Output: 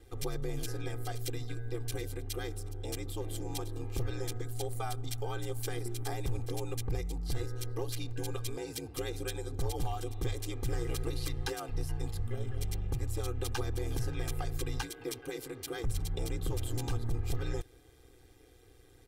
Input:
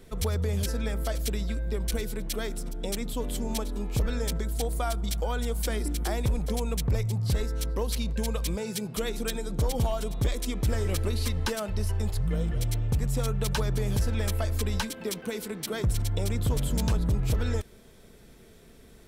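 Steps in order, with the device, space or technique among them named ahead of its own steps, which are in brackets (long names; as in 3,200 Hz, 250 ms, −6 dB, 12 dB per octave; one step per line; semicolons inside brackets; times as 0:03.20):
ring-modulated robot voice (ring modulation 62 Hz; comb filter 2.5 ms, depth 100%)
level −7 dB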